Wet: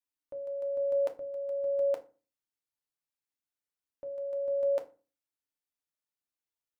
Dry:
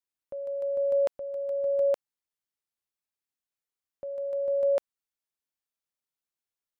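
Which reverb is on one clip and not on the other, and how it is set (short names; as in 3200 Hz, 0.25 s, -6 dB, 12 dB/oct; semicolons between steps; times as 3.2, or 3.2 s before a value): FDN reverb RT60 0.34 s, low-frequency decay 1.4×, high-frequency decay 0.7×, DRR 4.5 dB; gain -5 dB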